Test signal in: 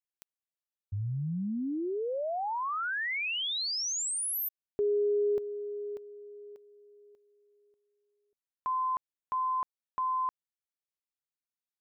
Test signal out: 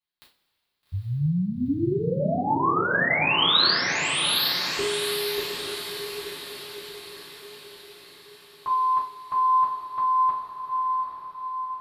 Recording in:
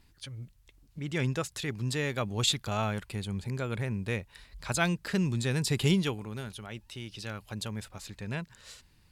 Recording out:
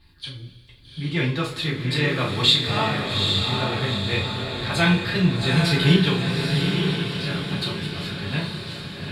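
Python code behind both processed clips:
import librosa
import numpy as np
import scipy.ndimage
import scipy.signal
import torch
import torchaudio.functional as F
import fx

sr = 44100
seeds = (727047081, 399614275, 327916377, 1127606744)

p1 = fx.high_shelf_res(x, sr, hz=5100.0, db=-7.0, q=3.0)
p2 = fx.doubler(p1, sr, ms=33.0, db=-8)
p3 = p2 + fx.echo_diffused(p2, sr, ms=829, feedback_pct=51, wet_db=-3.5, dry=0)
y = fx.rev_double_slope(p3, sr, seeds[0], early_s=0.27, late_s=2.9, knee_db=-21, drr_db=-6.0)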